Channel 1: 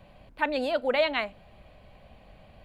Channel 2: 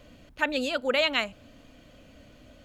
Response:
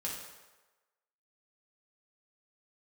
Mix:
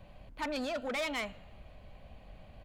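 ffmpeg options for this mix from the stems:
-filter_complex "[0:a]lowshelf=frequency=86:gain=7.5,volume=-3dB,asplit=2[link_01][link_02];[1:a]adelay=0.7,volume=-11dB,asplit=2[link_03][link_04];[link_04]volume=-15.5dB[link_05];[link_02]apad=whole_len=116782[link_06];[link_03][link_06]sidechaingate=range=-13dB:threshold=-44dB:ratio=16:detection=peak[link_07];[2:a]atrim=start_sample=2205[link_08];[link_05][link_08]afir=irnorm=-1:irlink=0[link_09];[link_01][link_07][link_09]amix=inputs=3:normalize=0,asoftclip=type=tanh:threshold=-31dB"

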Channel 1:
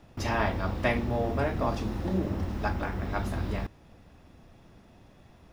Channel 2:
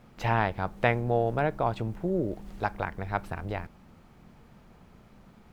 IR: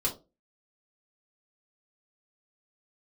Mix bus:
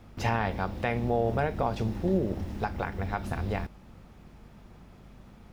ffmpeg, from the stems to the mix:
-filter_complex "[0:a]equalizer=frequency=1200:width=1.4:gain=-6.5,aeval=exprs='val(0)+0.00316*(sin(2*PI*50*n/s)+sin(2*PI*2*50*n/s)/2+sin(2*PI*3*50*n/s)/3+sin(2*PI*4*50*n/s)/4+sin(2*PI*5*50*n/s)/5)':channel_layout=same,volume=-3.5dB[link_01];[1:a]volume=0.5dB[link_02];[link_01][link_02]amix=inputs=2:normalize=0,alimiter=limit=-16.5dB:level=0:latency=1:release=126"

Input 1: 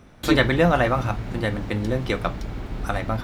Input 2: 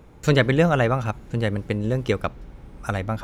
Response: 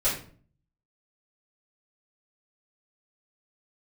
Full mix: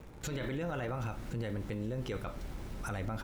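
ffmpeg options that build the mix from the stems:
-filter_complex "[0:a]acrusher=bits=6:mix=0:aa=0.000001,volume=-14dB,asplit=2[link_01][link_02];[link_02]volume=-18.5dB[link_03];[1:a]acompressor=threshold=-25dB:ratio=6,adelay=1.5,volume=-2.5dB,asplit=2[link_04][link_05];[link_05]apad=whole_len=142874[link_06];[link_01][link_06]sidechaincompress=threshold=-40dB:ratio=8:attack=16:release=143[link_07];[2:a]atrim=start_sample=2205[link_08];[link_03][link_08]afir=irnorm=-1:irlink=0[link_09];[link_07][link_04][link_09]amix=inputs=3:normalize=0,alimiter=level_in=5dB:limit=-24dB:level=0:latency=1:release=14,volume=-5dB"

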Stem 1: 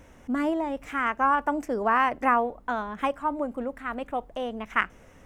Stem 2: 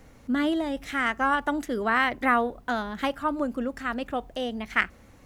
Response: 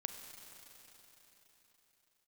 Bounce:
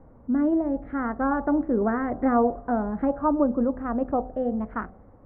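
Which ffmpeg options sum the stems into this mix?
-filter_complex "[0:a]volume=-7.5dB[link_01];[1:a]bandreject=frequency=63.52:width_type=h:width=4,bandreject=frequency=127.04:width_type=h:width=4,bandreject=frequency=190.56:width_type=h:width=4,bandreject=frequency=254.08:width_type=h:width=4,bandreject=frequency=317.6:width_type=h:width=4,bandreject=frequency=381.12:width_type=h:width=4,bandreject=frequency=444.64:width_type=h:width=4,bandreject=frequency=508.16:width_type=h:width=4,bandreject=frequency=571.68:width_type=h:width=4,bandreject=frequency=635.2:width_type=h:width=4,bandreject=frequency=698.72:width_type=h:width=4,bandreject=frequency=762.24:width_type=h:width=4,bandreject=frequency=825.76:width_type=h:width=4,deesser=0.95,volume=1dB,asplit=2[link_02][link_03];[link_03]volume=-20.5dB[link_04];[2:a]atrim=start_sample=2205[link_05];[link_04][link_05]afir=irnorm=-1:irlink=0[link_06];[link_01][link_02][link_06]amix=inputs=3:normalize=0,lowpass=frequency=1100:width=0.5412,lowpass=frequency=1100:width=1.3066,dynaudnorm=framelen=330:gausssize=5:maxgain=4dB"

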